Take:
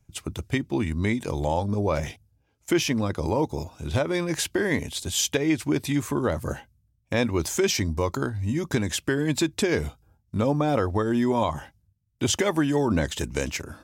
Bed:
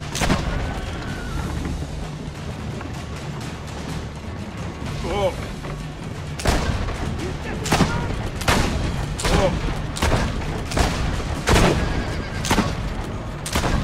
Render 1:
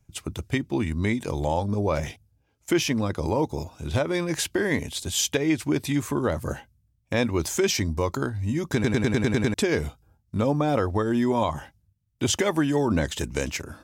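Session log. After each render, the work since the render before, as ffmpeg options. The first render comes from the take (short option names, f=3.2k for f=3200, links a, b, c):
-filter_complex "[0:a]asplit=9[a][b][c][d][e][f][g][h][i];[a]atrim=end=8.842[j];[b]atrim=start=8.738:end=8.842[k];[c]atrim=start=8.738:end=8.842[l];[d]atrim=start=8.738:end=8.842[m];[e]atrim=start=8.738:end=8.842[n];[f]atrim=start=8.738:end=8.842[o];[g]atrim=start=8.738:end=8.842[p];[h]atrim=start=8.738:end=8.842[q];[i]atrim=start=9.538[r];[j][k]acrossfade=d=0.004:c1=hsin:c2=hsin[s];[s][l]acrossfade=d=0.004:c1=hsin:c2=hsin[t];[t][m]acrossfade=d=0.004:c1=hsin:c2=hsin[u];[u][n]acrossfade=d=0.004:c1=hsin:c2=hsin[v];[v][o]acrossfade=d=0.004:c1=hsin:c2=hsin[w];[w][p]acrossfade=d=0.004:c1=hsin:c2=hsin[x];[x][q]acrossfade=d=0.004:c1=hsin:c2=hsin[y];[y][r]acrossfade=d=0.004:c1=hsin:c2=hsin"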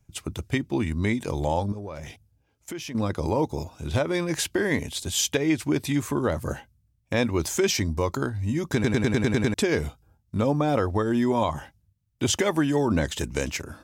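-filter_complex "[0:a]asettb=1/sr,asplit=3[a][b][c];[a]atrim=end=1.724[d];[b]atrim=start=1.72:end=2.95,asetpts=PTS-STARTPTS,afade=t=in:d=0.004:c=qsin,afade=t=out:st=1.226:d=0.004:c=qsin,acompressor=threshold=-36dB:ratio=3:attack=3.2:release=140:knee=1:detection=peak[e];[c]atrim=start=2.946[f];[d][e]acrossfade=d=0.004:c1=hsin:c2=qsin[g];[g][f]acrossfade=d=0.004:c1=qsin:c2=hsin"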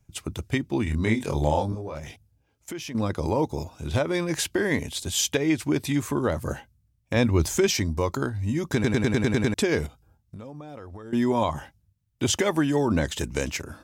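-filter_complex "[0:a]asettb=1/sr,asplit=3[a][b][c];[a]atrim=end=0.844[d];[b]atrim=start=0.84:end=1.99,asetpts=PTS-STARTPTS,afade=t=in:d=0.004:c=qsin,afade=t=out:st=1.146:d=0.004:c=qsin,asplit=2[e][f];[f]adelay=27,volume=-3.5dB[g];[e][g]amix=inputs=2:normalize=0,atrim=end_sample=50715[h];[c]atrim=start=1.986[i];[d][h]acrossfade=d=0.004:c1=hsin:c2=qsin[j];[j][i]acrossfade=d=0.004:c1=qsin:c2=hsin,asettb=1/sr,asplit=3[k][l][m];[k]atrim=end=7.164[n];[l]atrim=start=7.16:end=7.66,asetpts=PTS-STARTPTS,afade=t=in:d=0.004:c=qsin,afade=t=out:st=0.496:d=0.004:c=qsin,lowshelf=f=150:g=10.5[o];[m]atrim=start=7.656[p];[n][o]acrossfade=d=0.004:c1=hsin:c2=qsin[q];[q][p]acrossfade=d=0.004:c1=qsin:c2=hsin,asettb=1/sr,asplit=3[r][s][t];[r]atrim=end=9.864[u];[s]atrim=start=9.86:end=11.13,asetpts=PTS-STARTPTS,afade=t=in:d=0.004:c=qsin,afade=t=out:st=1.266:d=0.004:c=qsin,acompressor=threshold=-37dB:ratio=10:attack=3.2:release=140:knee=1:detection=peak[v];[t]atrim=start=11.126[w];[u][v]acrossfade=d=0.004:c1=hsin:c2=qsin[x];[x][w]acrossfade=d=0.004:c1=qsin:c2=hsin"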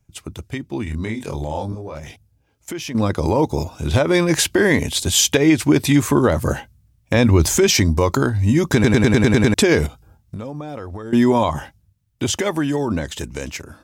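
-af "alimiter=limit=-15.5dB:level=0:latency=1:release=70,dynaudnorm=f=820:g=7:m=11dB"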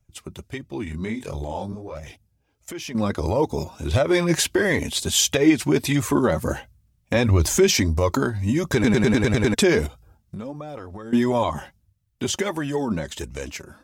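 -af "flanger=delay=1.5:depth=4:regen=35:speed=1.5:shape=sinusoidal"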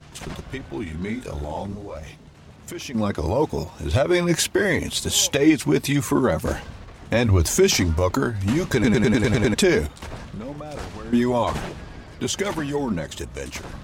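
-filter_complex "[1:a]volume=-16dB[a];[0:a][a]amix=inputs=2:normalize=0"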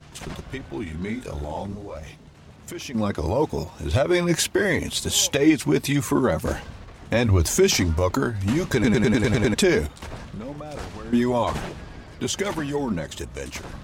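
-af "volume=-1dB"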